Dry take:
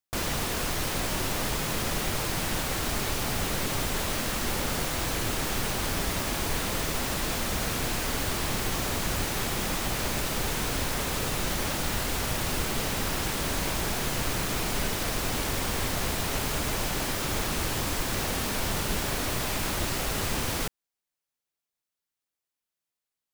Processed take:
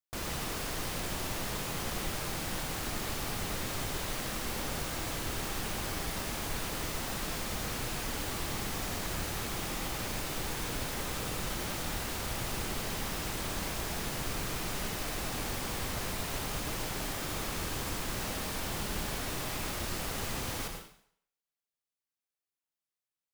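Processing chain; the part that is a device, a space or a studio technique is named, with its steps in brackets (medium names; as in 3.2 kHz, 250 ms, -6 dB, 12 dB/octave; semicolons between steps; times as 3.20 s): bathroom (reverberation RT60 0.60 s, pre-delay 79 ms, DRR 4 dB); trim -8 dB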